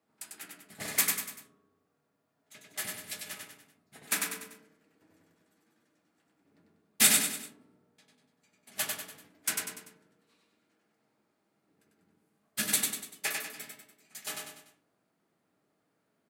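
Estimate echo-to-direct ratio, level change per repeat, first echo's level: −2.5 dB, −7.0 dB, −3.5 dB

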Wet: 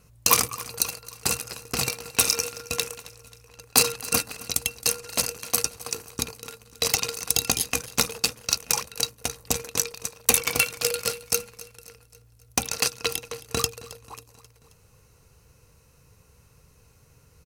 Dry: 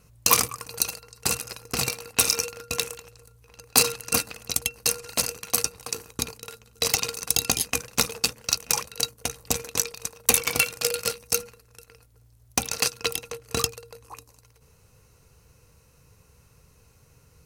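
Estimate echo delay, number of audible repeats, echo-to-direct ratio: 268 ms, 3, −17.5 dB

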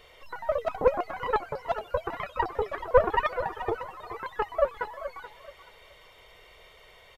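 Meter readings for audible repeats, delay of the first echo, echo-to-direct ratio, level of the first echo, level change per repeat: 2, 429 ms, −12.0 dB, −12.5 dB, −11.5 dB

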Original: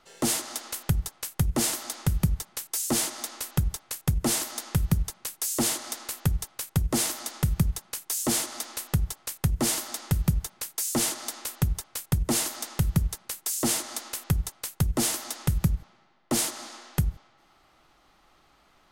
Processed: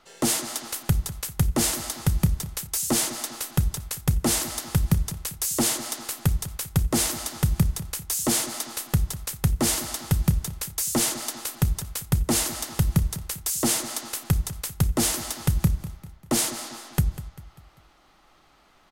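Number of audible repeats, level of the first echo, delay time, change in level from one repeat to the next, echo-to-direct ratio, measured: 3, −14.5 dB, 197 ms, −7.0 dB, −13.5 dB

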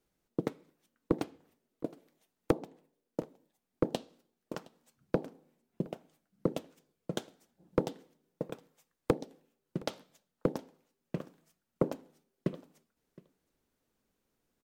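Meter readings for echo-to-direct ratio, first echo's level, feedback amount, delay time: −22.5 dB, −22.5 dB, repeats not evenly spaced, 716 ms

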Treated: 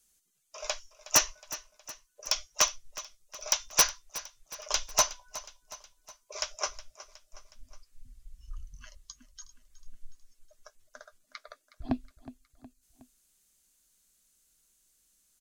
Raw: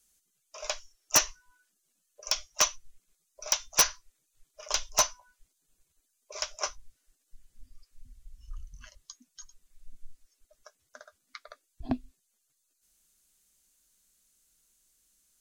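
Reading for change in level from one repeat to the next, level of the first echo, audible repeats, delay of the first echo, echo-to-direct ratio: −5.5 dB, −16.5 dB, 3, 366 ms, −15.0 dB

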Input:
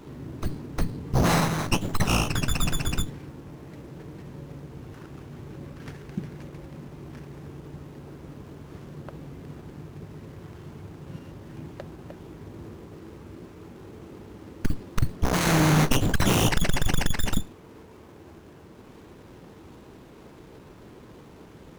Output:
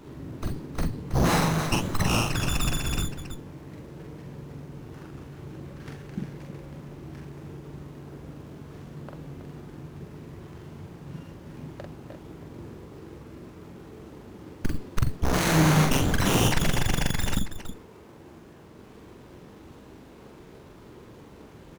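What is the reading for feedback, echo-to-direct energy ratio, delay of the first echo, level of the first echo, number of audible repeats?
repeats not evenly spaced, −2.5 dB, 44 ms, −3.5 dB, 2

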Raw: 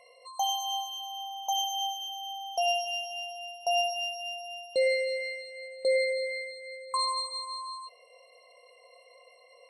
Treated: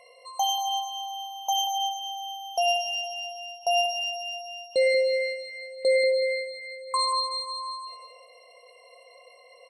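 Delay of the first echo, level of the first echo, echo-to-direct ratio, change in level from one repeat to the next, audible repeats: 187 ms, −8.0 dB, −7.5 dB, −10.5 dB, 3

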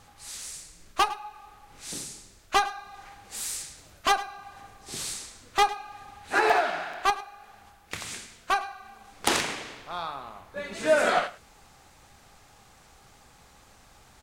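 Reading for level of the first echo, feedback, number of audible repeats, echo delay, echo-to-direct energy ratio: −17.5 dB, repeats not evenly spaced, 1, 105 ms, −17.5 dB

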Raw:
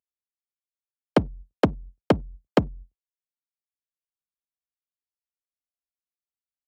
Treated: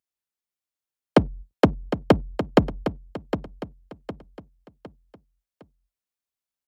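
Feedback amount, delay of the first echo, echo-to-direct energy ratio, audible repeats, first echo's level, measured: 39%, 759 ms, −9.5 dB, 4, −10.0 dB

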